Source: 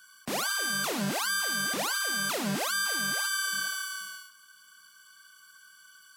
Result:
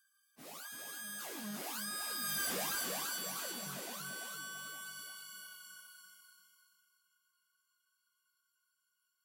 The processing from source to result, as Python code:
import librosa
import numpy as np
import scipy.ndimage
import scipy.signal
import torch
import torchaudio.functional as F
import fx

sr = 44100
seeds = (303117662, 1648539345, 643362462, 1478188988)

p1 = fx.doppler_pass(x, sr, speed_mps=15, closest_m=1.2, pass_at_s=1.63)
p2 = fx.stretch_vocoder_free(p1, sr, factor=1.5)
p3 = fx.high_shelf(p2, sr, hz=11000.0, db=11.5)
p4 = p3 + fx.echo_feedback(p3, sr, ms=339, feedback_pct=36, wet_db=-4.5, dry=0)
p5 = 10.0 ** (-35.0 / 20.0) * np.tanh(p4 / 10.0 ** (-35.0 / 20.0))
p6 = fx.rider(p5, sr, range_db=4, speed_s=0.5)
p7 = p5 + (p6 * librosa.db_to_amplitude(3.0))
y = p7 * librosa.db_to_amplitude(-4.0)